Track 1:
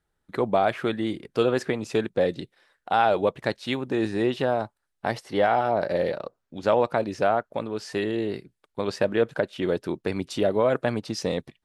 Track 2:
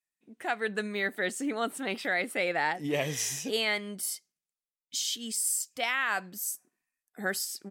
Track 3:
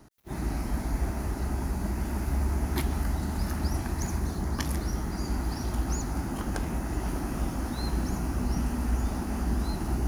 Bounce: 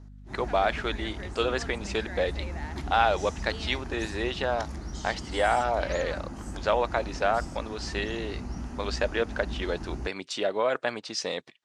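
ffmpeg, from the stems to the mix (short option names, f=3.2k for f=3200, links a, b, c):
-filter_complex "[0:a]highpass=f=1.2k:p=1,volume=3dB[a];[1:a]volume=-13.5dB[b];[2:a]aeval=exprs='val(0)+0.0126*(sin(2*PI*50*n/s)+sin(2*PI*2*50*n/s)/2+sin(2*PI*3*50*n/s)/3+sin(2*PI*4*50*n/s)/4+sin(2*PI*5*50*n/s)/5)':c=same,volume=-7.5dB[c];[a][b][c]amix=inputs=3:normalize=0,lowpass=f=7.8k:w=0.5412,lowpass=f=7.8k:w=1.3066"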